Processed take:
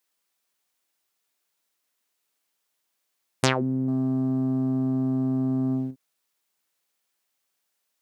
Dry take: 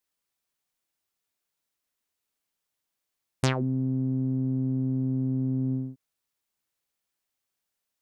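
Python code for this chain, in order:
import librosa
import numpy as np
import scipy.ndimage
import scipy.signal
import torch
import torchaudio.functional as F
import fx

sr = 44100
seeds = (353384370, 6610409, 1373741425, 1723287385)

y = fx.highpass(x, sr, hz=300.0, slope=6)
y = fx.leveller(y, sr, passes=1, at=(3.88, 5.91))
y = y * librosa.db_to_amplitude(6.5)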